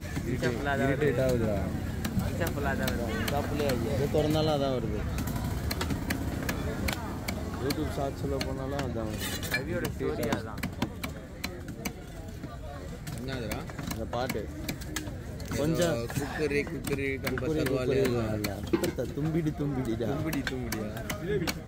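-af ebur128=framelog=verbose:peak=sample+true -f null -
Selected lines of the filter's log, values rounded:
Integrated loudness:
  I:         -31.3 LUFS
  Threshold: -41.3 LUFS
Loudness range:
  LRA:         6.8 LU
  Threshold: -51.5 LUFS
  LRA low:   -36.3 LUFS
  LRA high:  -29.5 LUFS
Sample peak:
  Peak:      -13.2 dBFS
True peak:
  Peak:      -13.1 dBFS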